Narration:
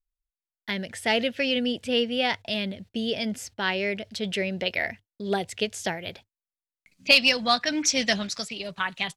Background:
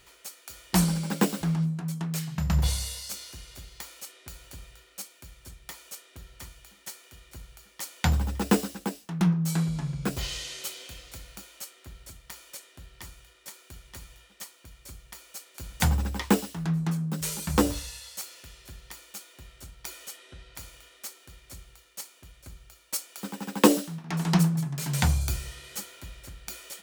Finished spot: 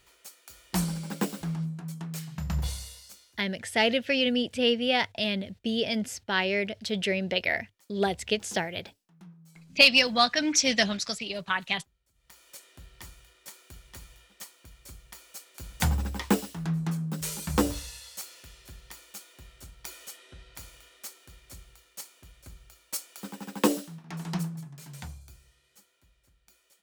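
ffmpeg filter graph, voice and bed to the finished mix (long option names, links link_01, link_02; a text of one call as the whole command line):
ffmpeg -i stem1.wav -i stem2.wav -filter_complex "[0:a]adelay=2700,volume=0dB[link_01];[1:a]volume=20dB,afade=type=out:start_time=2.59:duration=0.85:silence=0.0794328,afade=type=in:start_time=12.13:duration=0.57:silence=0.0530884,afade=type=out:start_time=22.82:duration=2.41:silence=0.0944061[link_02];[link_01][link_02]amix=inputs=2:normalize=0" out.wav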